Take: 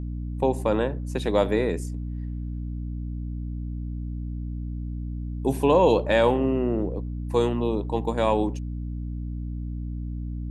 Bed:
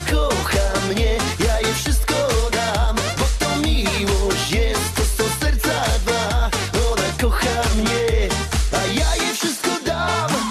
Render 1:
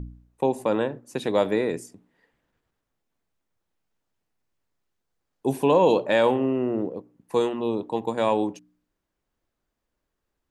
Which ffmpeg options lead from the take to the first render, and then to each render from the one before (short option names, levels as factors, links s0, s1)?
-af "bandreject=f=60:t=h:w=4,bandreject=f=120:t=h:w=4,bandreject=f=180:t=h:w=4,bandreject=f=240:t=h:w=4,bandreject=f=300:t=h:w=4"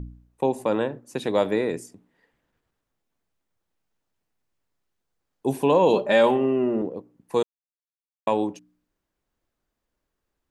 -filter_complex "[0:a]asettb=1/sr,asplit=3[s0][s1][s2];[s0]atrim=end=5.934[s3];[s1]atrim=start=5.93:end=6.82,asetpts=PTS-STARTPTS,afade=t=in:d=0.004:c=qsin,afade=t=out:st=0.886:d=0.004:c=qsin,aecho=1:1:5:0.65,atrim=end_sample=39249[s4];[s2]atrim=start=6.816[s5];[s3][s4]acrossfade=d=0.004:c1=hsin:c2=qsin[s6];[s6][s5]acrossfade=d=0.004:c1=qsin:c2=hsin,asplit=3[s7][s8][s9];[s7]atrim=end=7.43,asetpts=PTS-STARTPTS,afade=t=out:st=7.426:d=0.004:c=hsin[s10];[s8]atrim=start=7.43:end=8.27,asetpts=PTS-STARTPTS,volume=0[s11];[s9]atrim=start=8.27,asetpts=PTS-STARTPTS,afade=t=in:d=0.004:c=hsin[s12];[s10][s11][s12]concat=n=3:v=0:a=1"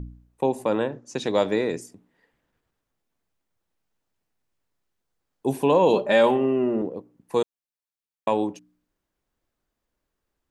-filter_complex "[0:a]asettb=1/sr,asplit=3[s0][s1][s2];[s0]atrim=end=0.924[s3];[s1]atrim=start=0.92:end=1.81,asetpts=PTS-STARTPTS,afade=t=in:d=0.004:c=qsin,afade=t=out:st=0.886:d=0.004:c=qsin,lowpass=f=6200:t=q:w=2.6[s4];[s2]atrim=start=1.806[s5];[s3][s4]acrossfade=d=0.004:c1=hsin:c2=qsin[s6];[s6][s5]acrossfade=d=0.004:c1=qsin:c2=hsin"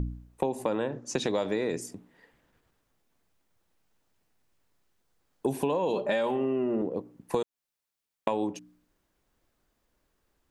-filter_complex "[0:a]asplit=2[s0][s1];[s1]alimiter=limit=0.133:level=0:latency=1:release=24,volume=1[s2];[s0][s2]amix=inputs=2:normalize=0,acompressor=threshold=0.0562:ratio=8"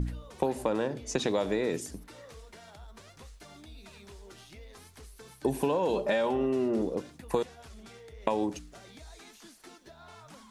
-filter_complex "[1:a]volume=0.0282[s0];[0:a][s0]amix=inputs=2:normalize=0"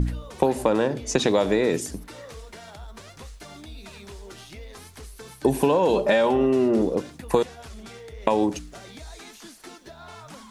-af "volume=2.51,alimiter=limit=0.708:level=0:latency=1"